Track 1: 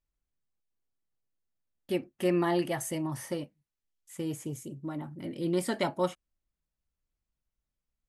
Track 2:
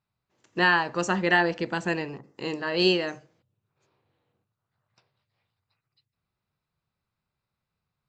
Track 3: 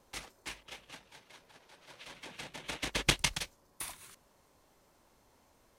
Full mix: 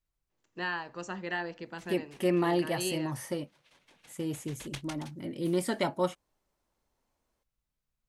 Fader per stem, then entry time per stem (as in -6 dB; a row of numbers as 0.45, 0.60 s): 0.0, -13.0, -14.5 dB; 0.00, 0.00, 1.65 s